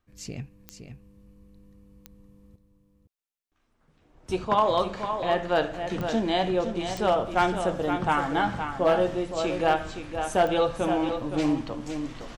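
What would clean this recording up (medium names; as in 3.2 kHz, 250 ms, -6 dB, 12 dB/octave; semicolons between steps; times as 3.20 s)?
clip repair -13.5 dBFS; de-click; inverse comb 516 ms -8 dB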